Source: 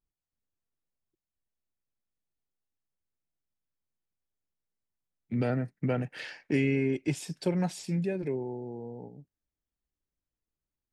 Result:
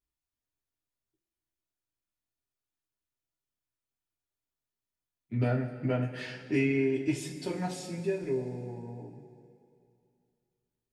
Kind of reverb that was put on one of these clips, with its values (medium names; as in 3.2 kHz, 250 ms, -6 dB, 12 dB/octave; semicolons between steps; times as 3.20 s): two-slope reverb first 0.21 s, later 2.5 s, from -18 dB, DRR -4.5 dB; trim -6 dB